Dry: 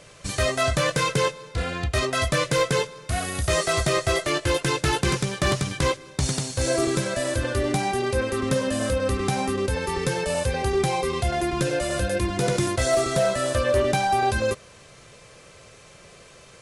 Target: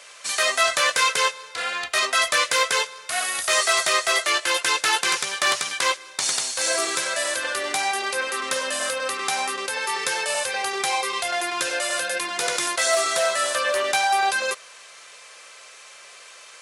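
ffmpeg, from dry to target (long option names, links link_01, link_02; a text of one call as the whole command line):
ffmpeg -i in.wav -af "highpass=1000,acontrast=69" out.wav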